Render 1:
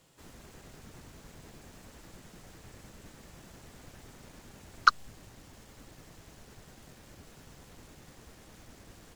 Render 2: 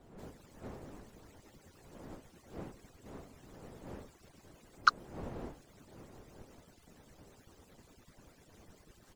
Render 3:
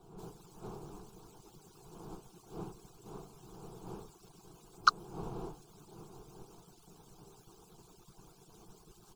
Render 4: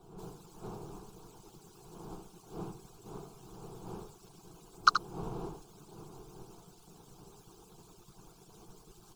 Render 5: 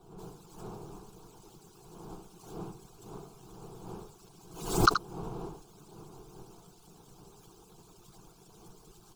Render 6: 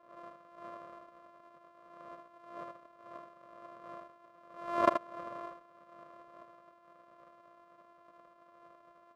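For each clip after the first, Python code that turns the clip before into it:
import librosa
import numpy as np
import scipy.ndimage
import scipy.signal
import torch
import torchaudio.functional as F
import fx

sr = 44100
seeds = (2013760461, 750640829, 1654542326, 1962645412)

y1 = fx.hpss_only(x, sr, part='percussive')
y1 = fx.dmg_wind(y1, sr, seeds[0], corner_hz=460.0, level_db=-48.0)
y1 = F.gain(torch.from_numpy(y1), -4.5).numpy()
y2 = fx.fixed_phaser(y1, sr, hz=380.0, stages=8)
y2 = F.gain(torch.from_numpy(y2), 4.5).numpy()
y3 = y2 + 10.0 ** (-8.5 / 20.0) * np.pad(y2, (int(79 * sr / 1000.0), 0))[:len(y2)]
y3 = F.gain(torch.from_numpy(y3), 1.5).numpy()
y4 = fx.pre_swell(y3, sr, db_per_s=87.0)
y5 = np.r_[np.sort(y4[:len(y4) // 128 * 128].reshape(-1, 128), axis=1).ravel(), y4[len(y4) // 128 * 128:]]
y5 = fx.double_bandpass(y5, sr, hz=830.0, octaves=0.82)
y5 = F.gain(torch.from_numpy(y5), 8.0).numpy()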